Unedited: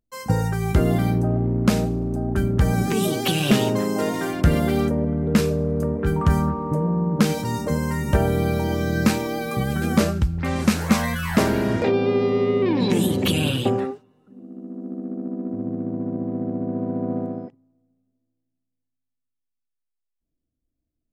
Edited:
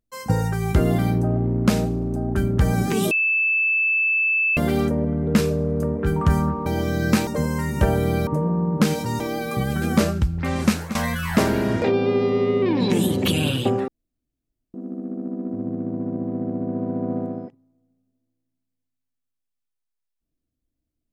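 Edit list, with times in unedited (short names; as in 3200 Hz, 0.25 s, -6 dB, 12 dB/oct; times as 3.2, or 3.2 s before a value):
3.11–4.57 bleep 2630 Hz -17 dBFS
6.66–7.59 swap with 8.59–9.2
10.69–10.95 fade out, to -16.5 dB
13.88–14.74 room tone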